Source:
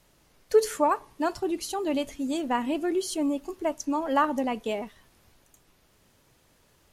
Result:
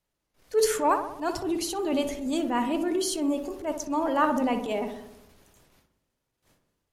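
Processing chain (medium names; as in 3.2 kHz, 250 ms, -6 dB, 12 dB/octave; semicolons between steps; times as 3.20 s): gate with hold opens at -51 dBFS; transient shaper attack -11 dB, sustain +3 dB; filtered feedback delay 61 ms, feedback 66%, low-pass 1.5 kHz, level -7 dB; trim +2 dB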